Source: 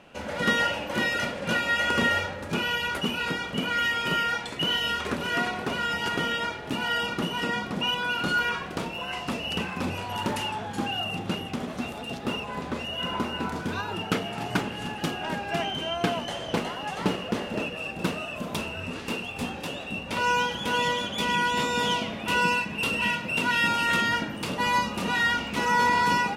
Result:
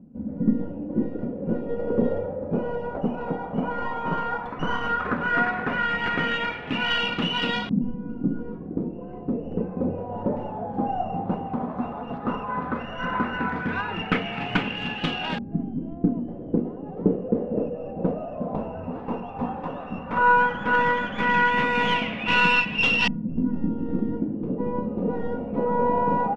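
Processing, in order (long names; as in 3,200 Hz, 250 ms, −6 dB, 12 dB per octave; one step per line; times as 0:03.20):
stylus tracing distortion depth 0.13 ms
parametric band 150 Hz +5 dB 0.8 octaves
comb filter 4 ms, depth 32%
reversed playback
upward compression, threshold −33 dBFS
reversed playback
auto-filter low-pass saw up 0.13 Hz 230–3,500 Hz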